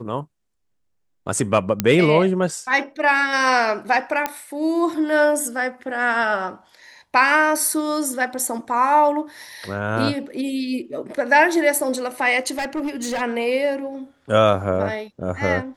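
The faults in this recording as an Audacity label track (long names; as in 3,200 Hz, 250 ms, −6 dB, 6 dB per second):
1.800000	1.800000	click −3 dBFS
4.260000	4.260000	click −7 dBFS
12.580000	13.220000	clipping −21 dBFS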